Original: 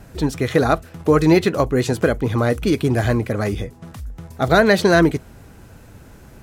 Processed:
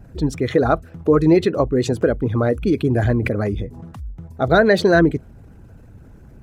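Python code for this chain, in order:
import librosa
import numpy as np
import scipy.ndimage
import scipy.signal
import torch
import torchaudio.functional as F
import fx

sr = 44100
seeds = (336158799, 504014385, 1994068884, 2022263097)

y = fx.envelope_sharpen(x, sr, power=1.5)
y = fx.pre_swell(y, sr, db_per_s=37.0, at=(2.95, 3.91))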